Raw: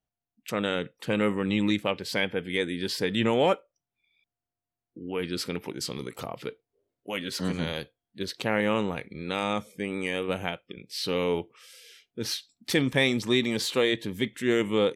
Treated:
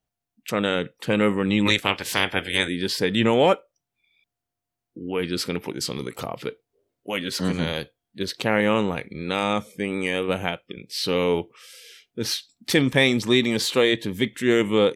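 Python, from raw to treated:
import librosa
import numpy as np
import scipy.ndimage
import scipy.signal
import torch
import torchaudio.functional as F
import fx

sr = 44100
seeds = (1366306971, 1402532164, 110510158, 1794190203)

y = fx.spec_clip(x, sr, under_db=21, at=(1.65, 2.67), fade=0.02)
y = F.gain(torch.from_numpy(y), 5.0).numpy()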